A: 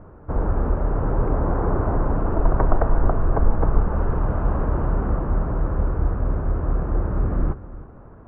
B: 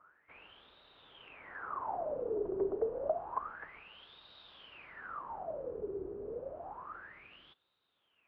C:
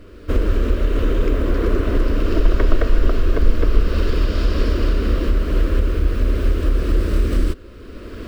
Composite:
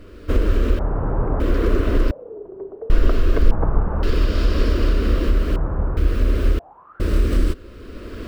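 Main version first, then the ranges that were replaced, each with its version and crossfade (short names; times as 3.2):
C
0.79–1.4 from A
2.11–2.9 from B
3.51–4.03 from A
5.56–5.97 from A
6.59–7 from B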